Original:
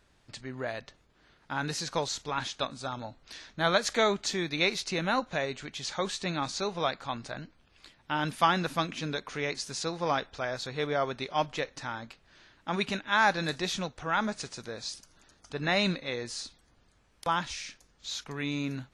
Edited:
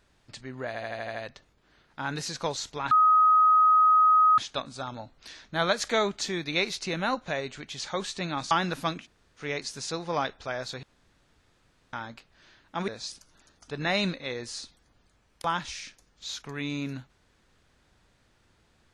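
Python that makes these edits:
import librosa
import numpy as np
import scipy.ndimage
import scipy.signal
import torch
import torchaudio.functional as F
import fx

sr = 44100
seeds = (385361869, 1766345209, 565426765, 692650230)

y = fx.edit(x, sr, fx.stutter(start_s=0.67, slice_s=0.08, count=7),
    fx.insert_tone(at_s=2.43, length_s=1.47, hz=1260.0, db=-16.0),
    fx.cut(start_s=6.56, length_s=1.88),
    fx.room_tone_fill(start_s=8.95, length_s=0.39, crossfade_s=0.1),
    fx.room_tone_fill(start_s=10.76, length_s=1.1),
    fx.cut(start_s=12.81, length_s=1.89), tone=tone)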